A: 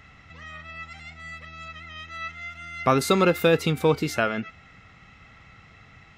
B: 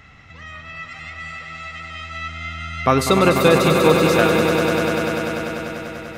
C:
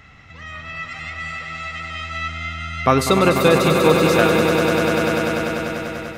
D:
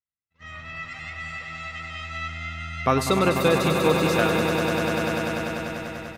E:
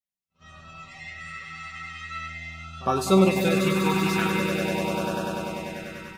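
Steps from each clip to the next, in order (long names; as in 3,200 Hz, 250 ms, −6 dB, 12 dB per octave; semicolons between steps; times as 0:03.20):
echo that builds up and dies away 98 ms, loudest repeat 5, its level −8 dB; level +4 dB
automatic gain control gain up to 3.5 dB
noise gate −36 dBFS, range −53 dB; slap from a distant wall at 17 metres, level −13 dB; level −5.5 dB
tuned comb filter 190 Hz, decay 0.19 s, harmonics all, mix 90%; echo ahead of the sound 57 ms −21 dB; auto-filter notch sine 0.43 Hz 550–2,100 Hz; level +8 dB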